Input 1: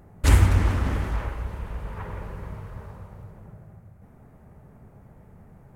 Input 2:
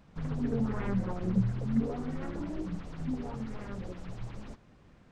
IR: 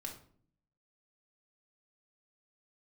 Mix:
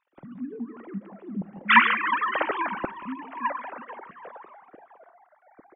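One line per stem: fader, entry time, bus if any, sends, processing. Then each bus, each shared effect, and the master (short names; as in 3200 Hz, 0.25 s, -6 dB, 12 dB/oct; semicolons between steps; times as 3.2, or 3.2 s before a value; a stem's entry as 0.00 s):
0.0 dB, 1.45 s, send -21.5 dB, no echo send, sine-wave speech; de-hum 389.6 Hz, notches 27; upward expander 1.5:1, over -34 dBFS
-3.5 dB, 0.00 s, send -9.5 dB, echo send -13 dB, sine-wave speech; compressor 1.5:1, threshold -34 dBFS, peak gain reduction 7 dB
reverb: on, RT60 0.55 s, pre-delay 4 ms
echo: feedback echo 0.175 s, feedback 56%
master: dry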